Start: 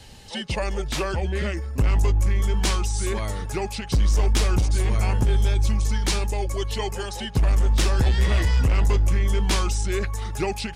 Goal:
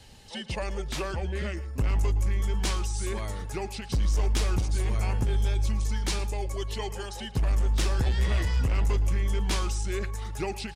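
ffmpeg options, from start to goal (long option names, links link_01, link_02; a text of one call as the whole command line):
ffmpeg -i in.wav -af "aecho=1:1:113:0.133,volume=-6dB" out.wav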